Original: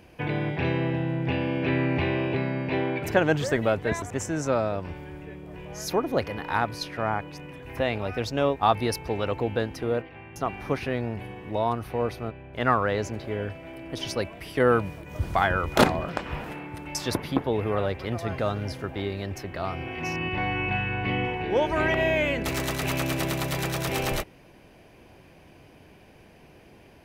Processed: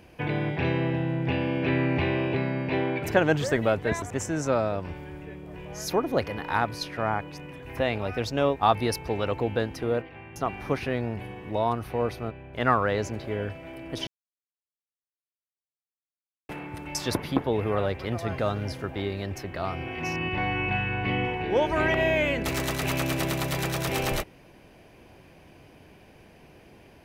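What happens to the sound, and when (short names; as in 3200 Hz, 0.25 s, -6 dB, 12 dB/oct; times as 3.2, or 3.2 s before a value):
14.07–16.49 mute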